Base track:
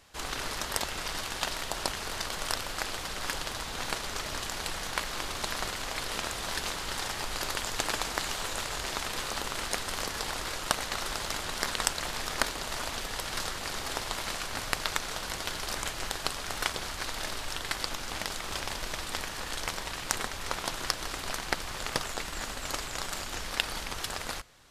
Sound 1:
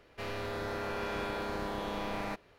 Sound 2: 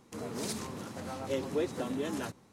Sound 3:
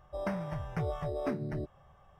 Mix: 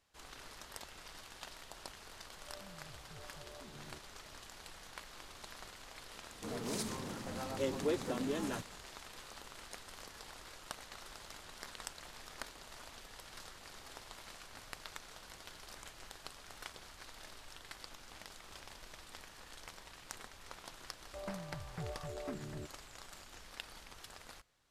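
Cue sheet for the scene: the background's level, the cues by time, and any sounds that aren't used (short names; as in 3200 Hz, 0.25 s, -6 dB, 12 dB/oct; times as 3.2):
base track -17.5 dB
2.34 add 3 -17.5 dB + limiter -29 dBFS
6.3 add 2 -2.5 dB
21.01 add 3 -9.5 dB
not used: 1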